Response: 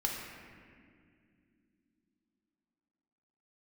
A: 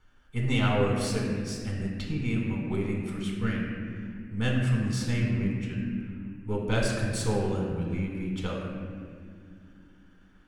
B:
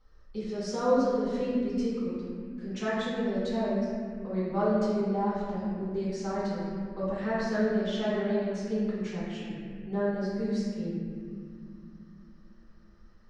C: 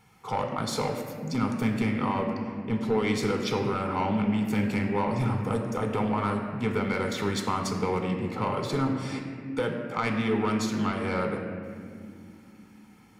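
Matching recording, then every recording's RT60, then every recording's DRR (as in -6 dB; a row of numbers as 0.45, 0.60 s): A; not exponential, not exponential, not exponential; -2.0, -10.5, 2.5 dB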